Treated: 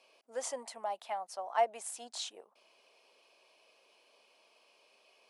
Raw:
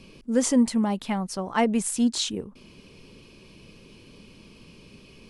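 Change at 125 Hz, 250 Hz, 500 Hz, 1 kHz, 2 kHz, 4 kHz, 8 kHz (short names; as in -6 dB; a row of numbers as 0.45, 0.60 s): under -40 dB, -37.0 dB, -8.5 dB, -4.0 dB, -11.5 dB, -12.5 dB, -12.5 dB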